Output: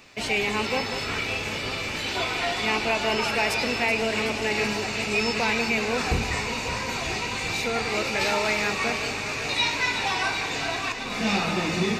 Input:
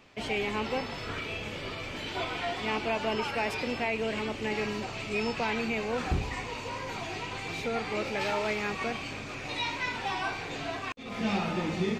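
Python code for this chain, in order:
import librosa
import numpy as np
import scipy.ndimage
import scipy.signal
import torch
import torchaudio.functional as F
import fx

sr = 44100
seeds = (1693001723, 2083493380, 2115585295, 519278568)

p1 = fx.high_shelf(x, sr, hz=2300.0, db=10.5)
p2 = fx.notch(p1, sr, hz=3200.0, q=9.3)
p3 = p2 + fx.echo_alternate(p2, sr, ms=189, hz=1300.0, feedback_pct=87, wet_db=-9.0, dry=0)
y = p3 * librosa.db_to_amplitude(3.0)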